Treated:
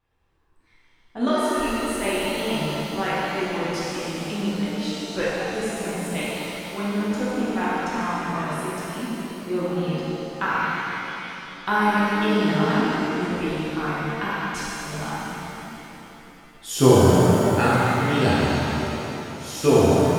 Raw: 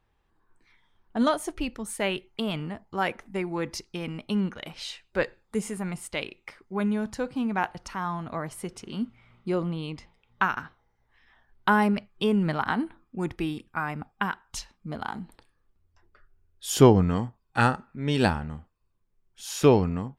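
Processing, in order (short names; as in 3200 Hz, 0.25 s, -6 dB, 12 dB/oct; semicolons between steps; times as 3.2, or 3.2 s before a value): vibrato 0.71 Hz 7.7 cents; de-hum 68.23 Hz, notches 28; shimmer reverb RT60 3.3 s, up +7 st, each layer -8 dB, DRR -9 dB; gain -4.5 dB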